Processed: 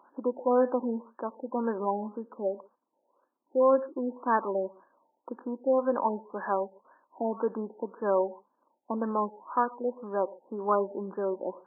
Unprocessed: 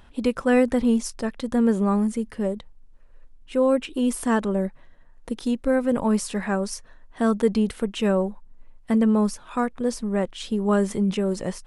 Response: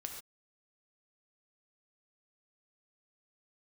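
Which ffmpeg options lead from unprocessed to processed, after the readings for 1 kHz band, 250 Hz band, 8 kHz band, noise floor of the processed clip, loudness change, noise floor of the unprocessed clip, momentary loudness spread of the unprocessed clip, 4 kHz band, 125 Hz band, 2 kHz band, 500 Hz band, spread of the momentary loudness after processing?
+1.0 dB, -13.0 dB, under -40 dB, -78 dBFS, -6.5 dB, -50 dBFS, 8 LU, under -40 dB, under -15 dB, -9.5 dB, -3.5 dB, 12 LU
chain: -filter_complex "[0:a]highpass=f=350:w=0.5412,highpass=f=350:w=1.3066,equalizer=f=440:t=q:w=4:g=-9,equalizer=f=680:t=q:w=4:g=-5,equalizer=f=990:t=q:w=4:g=5,equalizer=f=1400:t=q:w=4:g=-6,equalizer=f=2200:t=q:w=4:g=-9,lowpass=f=2400:w=0.5412,lowpass=f=2400:w=1.3066,asplit=2[s0][s1];[1:a]atrim=start_sample=2205[s2];[s1][s2]afir=irnorm=-1:irlink=0,volume=0.376[s3];[s0][s3]amix=inputs=2:normalize=0,afftfilt=real='re*lt(b*sr/1024,900*pow(1800/900,0.5+0.5*sin(2*PI*1.9*pts/sr)))':imag='im*lt(b*sr/1024,900*pow(1800/900,0.5+0.5*sin(2*PI*1.9*pts/sr)))':win_size=1024:overlap=0.75"

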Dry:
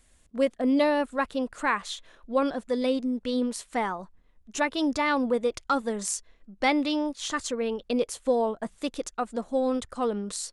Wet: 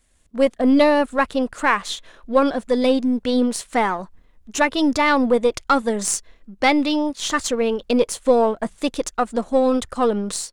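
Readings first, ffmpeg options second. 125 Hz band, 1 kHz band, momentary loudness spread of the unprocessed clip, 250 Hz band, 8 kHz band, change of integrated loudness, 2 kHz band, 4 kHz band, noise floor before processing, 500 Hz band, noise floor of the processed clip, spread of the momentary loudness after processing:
no reading, +8.0 dB, 8 LU, +7.5 dB, +8.0 dB, +8.0 dB, +8.0 dB, +7.5 dB, -62 dBFS, +8.0 dB, -56 dBFS, 8 LU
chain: -af "aeval=exprs='if(lt(val(0),0),0.708*val(0),val(0))':c=same,dynaudnorm=f=230:g=3:m=3.16"

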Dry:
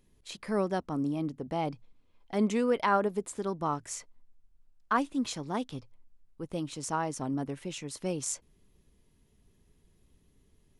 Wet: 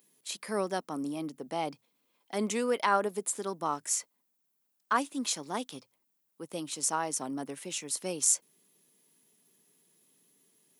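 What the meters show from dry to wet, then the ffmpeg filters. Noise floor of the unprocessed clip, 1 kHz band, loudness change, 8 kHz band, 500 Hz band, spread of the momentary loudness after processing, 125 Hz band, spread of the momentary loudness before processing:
-67 dBFS, 0.0 dB, +0.5 dB, +9.0 dB, -1.5 dB, 11 LU, -9.0 dB, 13 LU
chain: -af "highpass=f=150:w=0.5412,highpass=f=150:w=1.3066,aemphasis=mode=production:type=bsi"

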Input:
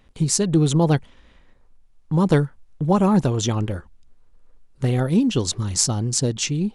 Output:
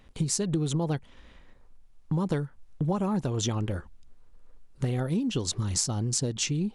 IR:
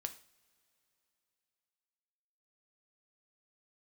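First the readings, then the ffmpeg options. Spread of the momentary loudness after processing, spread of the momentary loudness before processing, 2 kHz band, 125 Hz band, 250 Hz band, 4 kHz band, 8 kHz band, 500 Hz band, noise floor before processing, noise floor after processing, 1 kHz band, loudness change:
6 LU, 8 LU, -8.0 dB, -8.0 dB, -9.0 dB, -6.5 dB, -6.5 dB, -9.5 dB, -54 dBFS, -55 dBFS, -10.5 dB, -8.5 dB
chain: -af "acompressor=threshold=0.0562:ratio=6"

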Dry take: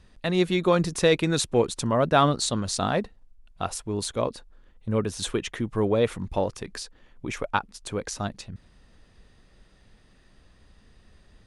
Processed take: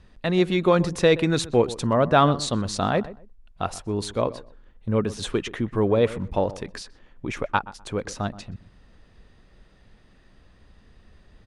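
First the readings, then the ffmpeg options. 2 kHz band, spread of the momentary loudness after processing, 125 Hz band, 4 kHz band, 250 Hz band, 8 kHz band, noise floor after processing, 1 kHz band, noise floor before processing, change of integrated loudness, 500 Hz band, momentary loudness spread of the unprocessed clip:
+1.5 dB, 18 LU, +2.5 dB, -0.5 dB, +2.5 dB, -4.0 dB, -55 dBFS, +2.0 dB, -58 dBFS, +2.0 dB, +2.5 dB, 15 LU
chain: -filter_complex "[0:a]lowpass=f=3700:p=1,asplit=2[s0][s1];[s1]adelay=125,lowpass=f=1400:p=1,volume=0.158,asplit=2[s2][s3];[s3]adelay=125,lowpass=f=1400:p=1,volume=0.22[s4];[s2][s4]amix=inputs=2:normalize=0[s5];[s0][s5]amix=inputs=2:normalize=0,volume=1.33"

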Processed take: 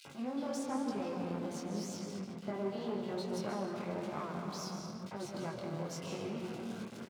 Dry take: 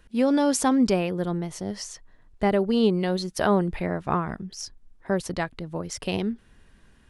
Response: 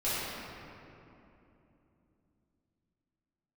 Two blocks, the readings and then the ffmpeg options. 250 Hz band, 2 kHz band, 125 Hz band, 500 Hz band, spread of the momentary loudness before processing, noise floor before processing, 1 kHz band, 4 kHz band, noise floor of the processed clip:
-14.0 dB, -15.0 dB, -12.5 dB, -13.5 dB, 15 LU, -57 dBFS, -13.0 dB, -12.5 dB, -48 dBFS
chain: -filter_complex "[0:a]aeval=exprs='val(0)+0.5*0.0376*sgn(val(0))':c=same,asuperstop=centerf=1800:order=4:qfactor=5.3,acrossover=split=9100[s0][s1];[s1]acompressor=threshold=0.00316:ratio=4:attack=1:release=60[s2];[s0][s2]amix=inputs=2:normalize=0,flanger=delay=7.2:depth=3.2:regen=33:speed=0.35:shape=triangular,acompressor=threshold=0.02:ratio=2,asplit=2[s3][s4];[1:a]atrim=start_sample=2205,asetrate=40572,aresample=44100,adelay=137[s5];[s4][s5]afir=irnorm=-1:irlink=0,volume=0.266[s6];[s3][s6]amix=inputs=2:normalize=0,aeval=exprs='clip(val(0),-1,0.02)':c=same,acrossover=split=2600[s7][s8];[s7]adelay=50[s9];[s9][s8]amix=inputs=2:normalize=0,flanger=delay=19.5:depth=6.6:speed=0.96,highpass=f=120:w=0.5412,highpass=f=120:w=1.3066,highshelf=f=6000:g=-6,volume=0.75"

